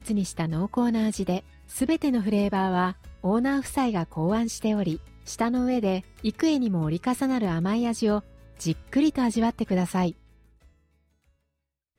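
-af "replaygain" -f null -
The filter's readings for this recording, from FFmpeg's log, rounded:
track_gain = +7.3 dB
track_peak = 0.174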